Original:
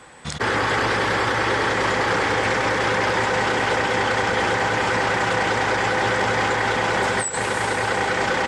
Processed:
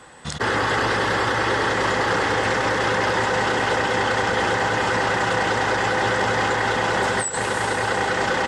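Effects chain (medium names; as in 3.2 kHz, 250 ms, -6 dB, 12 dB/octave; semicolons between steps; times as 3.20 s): band-stop 2.3 kHz, Q 8.5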